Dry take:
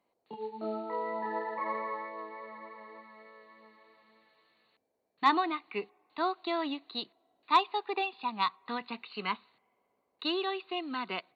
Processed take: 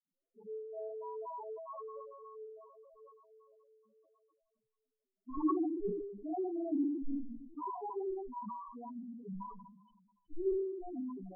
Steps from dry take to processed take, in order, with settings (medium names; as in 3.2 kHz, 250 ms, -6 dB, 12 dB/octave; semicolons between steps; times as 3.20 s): dead-time distortion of 0.19 ms; peaking EQ 1.9 kHz -4.5 dB 1.7 oct; feedback echo behind a high-pass 122 ms, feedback 63%, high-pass 1.9 kHz, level -3 dB; reverberation RT60 0.95 s, pre-delay 46 ms; loudest bins only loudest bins 2; flange 0.92 Hz, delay 3.7 ms, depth 2 ms, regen +86%; low-pass that closes with the level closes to 820 Hz, closed at -51.5 dBFS; 5.37–7.90 s: bass shelf 300 Hz +11.5 dB; decay stretcher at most 51 dB/s; trim +14 dB